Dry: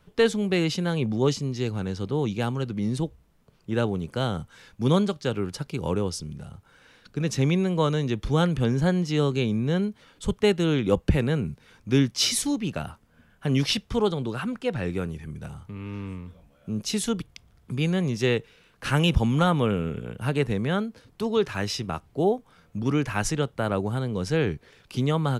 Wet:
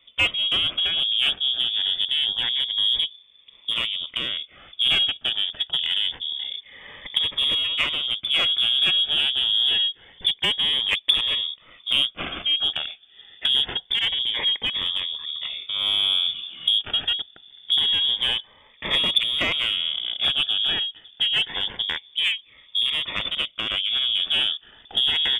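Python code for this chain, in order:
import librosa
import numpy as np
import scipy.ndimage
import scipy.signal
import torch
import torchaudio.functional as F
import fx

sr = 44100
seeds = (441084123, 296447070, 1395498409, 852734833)

p1 = fx.self_delay(x, sr, depth_ms=0.95)
p2 = fx.recorder_agc(p1, sr, target_db=-16.0, rise_db_per_s=14.0, max_gain_db=30)
p3 = fx.freq_invert(p2, sr, carrier_hz=3500)
p4 = np.clip(p3, -10.0 ** (-18.0 / 20.0), 10.0 ** (-18.0 / 20.0))
p5 = p3 + (p4 * 10.0 ** (-8.0 / 20.0))
y = fx.notch_cascade(p5, sr, direction='rising', hz=0.26)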